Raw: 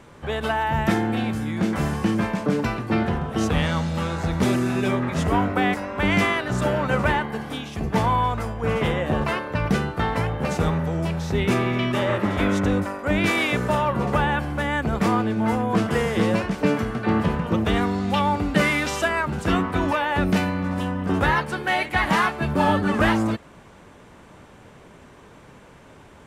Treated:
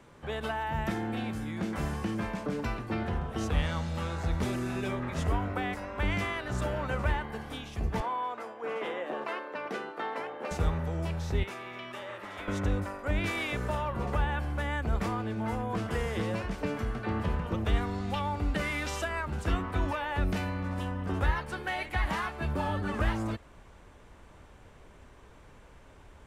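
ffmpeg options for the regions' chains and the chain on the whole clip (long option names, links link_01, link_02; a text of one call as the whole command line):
ffmpeg -i in.wav -filter_complex "[0:a]asettb=1/sr,asplit=3[link_01][link_02][link_03];[link_01]atrim=end=8.004[link_04];[link_02]atrim=start=8:end=10.51,asetpts=PTS-STARTPTS,afade=type=in:duration=0.004:curve=qsin,afade=type=out:start_time=2.506:duration=0.004:curve=qsin,highpass=frequency=280:width=0.5412,highpass=frequency=280:width=1.3066,highshelf=frequency=4800:gain=-11[link_05];[link_03]atrim=start=10.506[link_06];[link_04][link_05]acrossfade=duration=0.004:curve1=hsin:curve2=qsin[link_07];[link_07][link_06]acrossfade=duration=0.004:curve1=qsin:curve2=hsin,asettb=1/sr,asplit=3[link_08][link_09][link_10];[link_08]atrim=end=11.434[link_11];[link_09]atrim=start=11.43:end=12.48,asetpts=PTS-STARTPTS,afade=type=in:duration=0.004:curve=qsin,afade=type=out:start_time=1.046:duration=0.004:curve=qsin,highpass=frequency=370:poles=1,acrossover=split=570|1600[link_12][link_13][link_14];[link_12]acompressor=threshold=-39dB:ratio=4[link_15];[link_13]acompressor=threshold=-36dB:ratio=4[link_16];[link_14]acompressor=threshold=-38dB:ratio=4[link_17];[link_15][link_16][link_17]amix=inputs=3:normalize=0[link_18];[link_10]atrim=start=12.476[link_19];[link_11][link_18]acrossfade=duration=0.004:curve1=hsin:curve2=qsin[link_20];[link_20][link_19]acrossfade=duration=0.004:curve1=qsin:curve2=hsin,asubboost=boost=5.5:cutoff=65,acrossover=split=130[link_21][link_22];[link_22]acompressor=threshold=-21dB:ratio=6[link_23];[link_21][link_23]amix=inputs=2:normalize=0,volume=-8dB" out.wav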